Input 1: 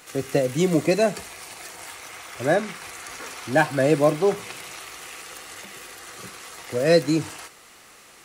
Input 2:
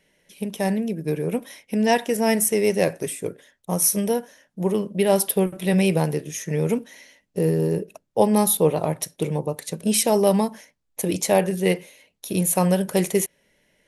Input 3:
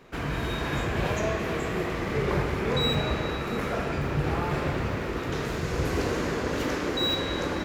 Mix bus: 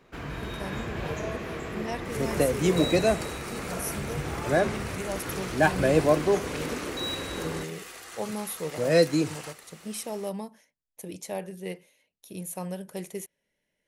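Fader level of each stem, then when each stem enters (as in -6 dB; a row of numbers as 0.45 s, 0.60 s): -3.0 dB, -15.5 dB, -6.0 dB; 2.05 s, 0.00 s, 0.00 s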